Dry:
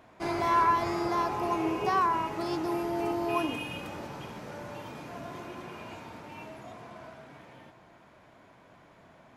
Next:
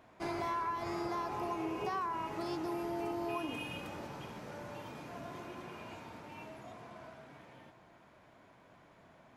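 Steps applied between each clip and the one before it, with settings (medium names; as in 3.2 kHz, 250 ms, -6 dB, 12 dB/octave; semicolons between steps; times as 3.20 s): compression 6:1, threshold -29 dBFS, peak gain reduction 9 dB; trim -4.5 dB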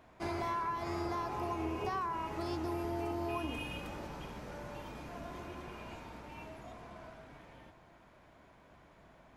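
octave divider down 2 oct, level -2 dB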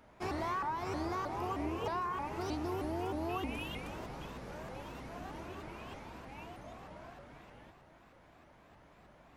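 vibrato with a chosen wave saw up 3.2 Hz, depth 250 cents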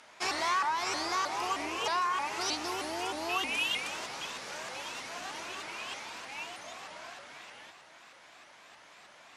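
frequency weighting ITU-R 468; trim +6 dB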